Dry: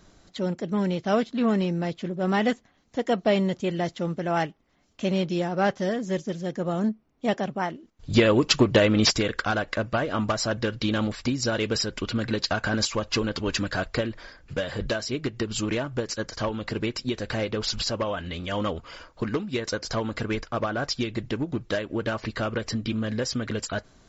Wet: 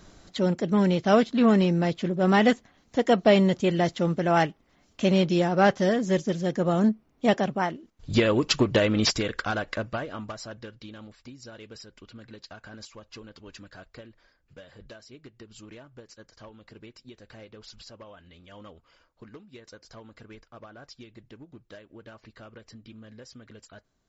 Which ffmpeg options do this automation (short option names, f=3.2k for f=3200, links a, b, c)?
-af "volume=3.5dB,afade=t=out:st=7.25:d=0.96:silence=0.473151,afade=t=out:st=9.75:d=0.45:silence=0.398107,afade=t=out:st=10.2:d=0.75:silence=0.398107"